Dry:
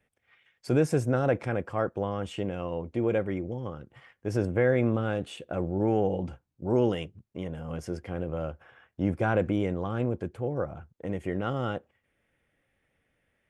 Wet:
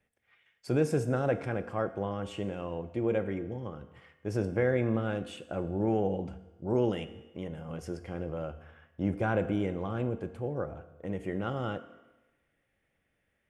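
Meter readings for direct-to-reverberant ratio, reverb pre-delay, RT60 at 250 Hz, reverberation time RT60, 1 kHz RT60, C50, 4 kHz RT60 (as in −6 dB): 10.5 dB, 4 ms, 1.1 s, 1.1 s, 1.1 s, 13.5 dB, 1.0 s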